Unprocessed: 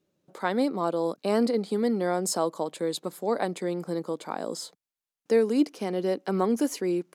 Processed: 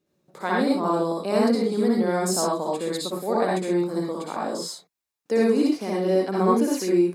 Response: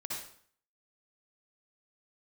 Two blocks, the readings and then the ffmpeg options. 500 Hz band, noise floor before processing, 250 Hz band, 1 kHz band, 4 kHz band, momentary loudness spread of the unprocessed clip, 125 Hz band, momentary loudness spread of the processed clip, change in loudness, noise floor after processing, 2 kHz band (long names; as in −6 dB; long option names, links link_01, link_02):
+3.5 dB, below −85 dBFS, +5.0 dB, +5.0 dB, +4.5 dB, 8 LU, +5.5 dB, 9 LU, +4.5 dB, −79 dBFS, +5.0 dB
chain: -filter_complex "[0:a]bandreject=frequency=3100:width=27[link_01];[1:a]atrim=start_sample=2205,atrim=end_sample=6174[link_02];[link_01][link_02]afir=irnorm=-1:irlink=0,volume=4dB"